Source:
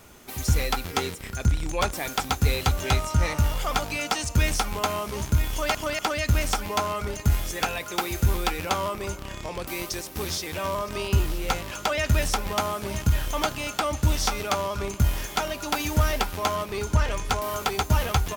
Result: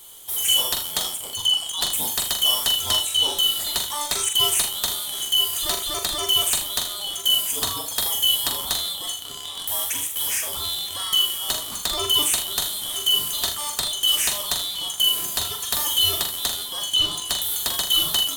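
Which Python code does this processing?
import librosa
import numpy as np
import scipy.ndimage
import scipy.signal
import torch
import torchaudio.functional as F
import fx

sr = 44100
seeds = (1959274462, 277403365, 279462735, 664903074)

p1 = fx.band_shuffle(x, sr, order='2413')
p2 = fx.high_shelf_res(p1, sr, hz=6700.0, db=11.5, q=1.5)
y = p2 + fx.room_early_taps(p2, sr, ms=(43, 79), db=(-6.0, -11.0), dry=0)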